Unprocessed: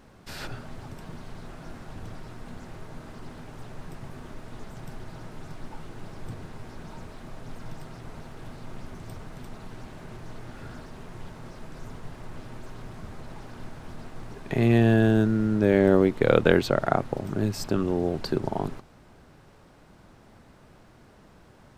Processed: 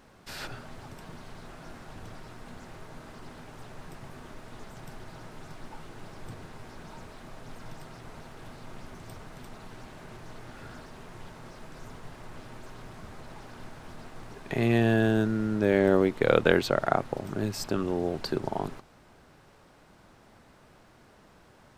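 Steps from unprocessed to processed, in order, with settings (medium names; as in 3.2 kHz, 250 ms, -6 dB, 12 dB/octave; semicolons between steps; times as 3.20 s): bass shelf 370 Hz -6 dB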